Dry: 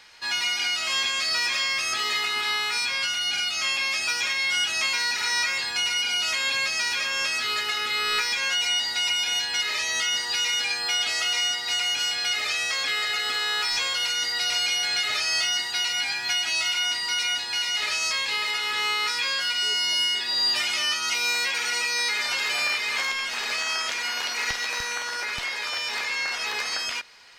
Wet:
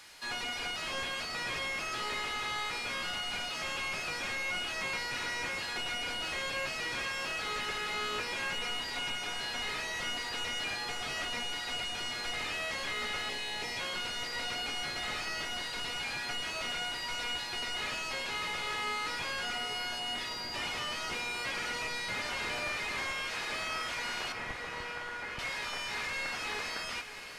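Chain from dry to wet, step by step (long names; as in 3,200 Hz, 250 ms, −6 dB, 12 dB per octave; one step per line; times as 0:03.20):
linear delta modulator 64 kbit/s, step −42 dBFS
0:13.29–0:13.79: Butterworth band-reject 1,300 Hz, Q 1.7
0:24.32–0:25.39: high-frequency loss of the air 440 metres
feedback delay with all-pass diffusion 616 ms, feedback 73%, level −12 dB
level −5.5 dB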